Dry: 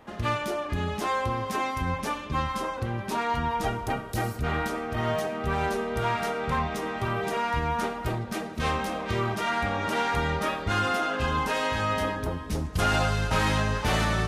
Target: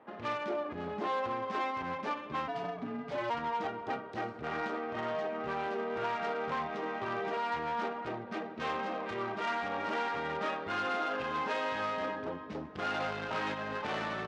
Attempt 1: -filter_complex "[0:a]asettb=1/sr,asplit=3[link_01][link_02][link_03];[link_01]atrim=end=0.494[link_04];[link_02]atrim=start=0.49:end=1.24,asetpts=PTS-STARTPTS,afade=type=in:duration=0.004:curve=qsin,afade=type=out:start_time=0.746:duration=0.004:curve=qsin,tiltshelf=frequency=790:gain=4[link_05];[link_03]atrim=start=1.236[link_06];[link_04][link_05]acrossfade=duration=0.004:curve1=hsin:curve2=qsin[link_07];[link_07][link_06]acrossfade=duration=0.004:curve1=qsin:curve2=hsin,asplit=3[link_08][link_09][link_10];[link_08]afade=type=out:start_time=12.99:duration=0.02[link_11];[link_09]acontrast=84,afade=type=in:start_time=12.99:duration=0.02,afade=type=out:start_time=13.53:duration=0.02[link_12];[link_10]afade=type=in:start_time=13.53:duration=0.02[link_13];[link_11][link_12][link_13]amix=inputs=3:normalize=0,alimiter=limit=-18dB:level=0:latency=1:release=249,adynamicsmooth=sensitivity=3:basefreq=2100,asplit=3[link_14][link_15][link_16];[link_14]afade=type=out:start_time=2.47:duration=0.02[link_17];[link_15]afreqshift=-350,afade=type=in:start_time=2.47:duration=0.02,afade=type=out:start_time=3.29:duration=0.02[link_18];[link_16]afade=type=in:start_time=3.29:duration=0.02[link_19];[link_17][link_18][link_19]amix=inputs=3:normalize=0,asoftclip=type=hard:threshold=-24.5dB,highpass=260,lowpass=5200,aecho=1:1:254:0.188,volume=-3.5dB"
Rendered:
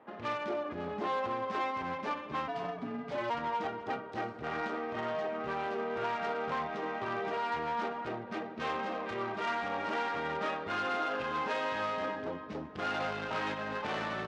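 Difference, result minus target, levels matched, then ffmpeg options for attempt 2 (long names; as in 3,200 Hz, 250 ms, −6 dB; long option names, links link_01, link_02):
echo-to-direct +10.5 dB
-filter_complex "[0:a]asettb=1/sr,asplit=3[link_01][link_02][link_03];[link_01]atrim=end=0.494[link_04];[link_02]atrim=start=0.49:end=1.24,asetpts=PTS-STARTPTS,afade=type=in:duration=0.004:curve=qsin,afade=type=out:start_time=0.746:duration=0.004:curve=qsin,tiltshelf=frequency=790:gain=4[link_05];[link_03]atrim=start=1.236[link_06];[link_04][link_05]acrossfade=duration=0.004:curve1=hsin:curve2=qsin[link_07];[link_07][link_06]acrossfade=duration=0.004:curve1=qsin:curve2=hsin,asplit=3[link_08][link_09][link_10];[link_08]afade=type=out:start_time=12.99:duration=0.02[link_11];[link_09]acontrast=84,afade=type=in:start_time=12.99:duration=0.02,afade=type=out:start_time=13.53:duration=0.02[link_12];[link_10]afade=type=in:start_time=13.53:duration=0.02[link_13];[link_11][link_12][link_13]amix=inputs=3:normalize=0,alimiter=limit=-18dB:level=0:latency=1:release=249,adynamicsmooth=sensitivity=3:basefreq=2100,asplit=3[link_14][link_15][link_16];[link_14]afade=type=out:start_time=2.47:duration=0.02[link_17];[link_15]afreqshift=-350,afade=type=in:start_time=2.47:duration=0.02,afade=type=out:start_time=3.29:duration=0.02[link_18];[link_16]afade=type=in:start_time=3.29:duration=0.02[link_19];[link_17][link_18][link_19]amix=inputs=3:normalize=0,asoftclip=type=hard:threshold=-24.5dB,highpass=260,lowpass=5200,aecho=1:1:254:0.0562,volume=-3.5dB"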